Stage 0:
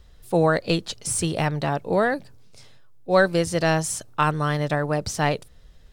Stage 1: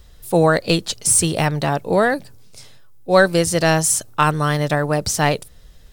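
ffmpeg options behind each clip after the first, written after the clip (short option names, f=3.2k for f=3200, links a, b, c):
-af "highshelf=f=7.2k:g=11,volume=4.5dB"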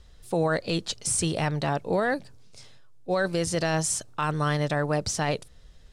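-af "lowpass=7.8k,alimiter=limit=-10.5dB:level=0:latency=1:release=22,volume=-6dB"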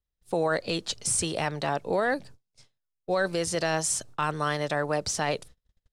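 -filter_complex "[0:a]agate=range=-35dB:threshold=-44dB:ratio=16:detection=peak,acrossover=split=310[a][b];[a]acompressor=threshold=-36dB:ratio=6[c];[c][b]amix=inputs=2:normalize=0"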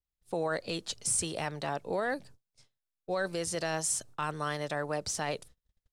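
-af "adynamicequalizer=threshold=0.00891:dfrequency=7400:dqfactor=0.7:tfrequency=7400:tqfactor=0.7:attack=5:release=100:ratio=0.375:range=2.5:mode=boostabove:tftype=highshelf,volume=-6dB"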